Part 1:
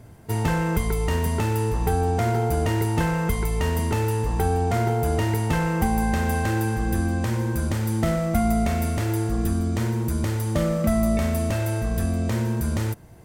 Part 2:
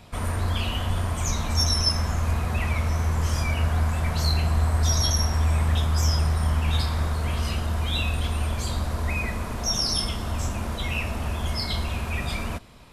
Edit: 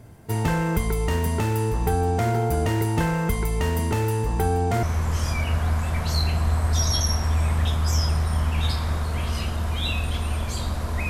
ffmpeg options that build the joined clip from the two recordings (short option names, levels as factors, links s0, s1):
-filter_complex "[0:a]apad=whole_dur=11.09,atrim=end=11.09,atrim=end=4.832[s0];[1:a]atrim=start=2.928:end=9.19[s1];[s0][s1]acrossfade=d=0.004:c1=hsin:c2=hsin"